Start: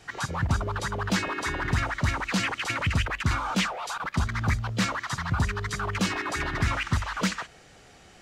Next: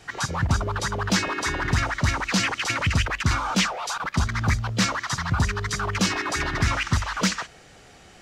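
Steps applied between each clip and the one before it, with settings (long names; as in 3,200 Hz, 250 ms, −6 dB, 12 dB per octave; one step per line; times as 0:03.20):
dynamic equaliser 5,600 Hz, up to +6 dB, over −47 dBFS, Q 1.6
level +3 dB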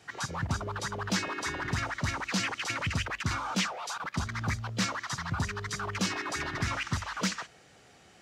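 high-pass filter 86 Hz 12 dB per octave
level −7.5 dB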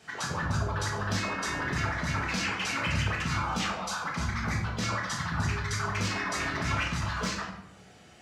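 reverb reduction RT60 0.63 s
brickwall limiter −25 dBFS, peak gain reduction 9 dB
rectangular room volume 260 cubic metres, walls mixed, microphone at 1.5 metres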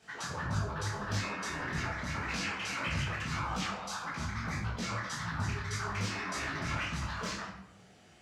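micro pitch shift up and down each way 59 cents
level −1.5 dB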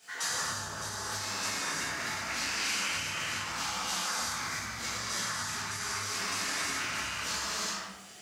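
reverb whose tail is shaped and stops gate 440 ms flat, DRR −7.5 dB
downward compressor, threshold −30 dBFS, peak gain reduction 9.5 dB
RIAA equalisation recording
level −1.5 dB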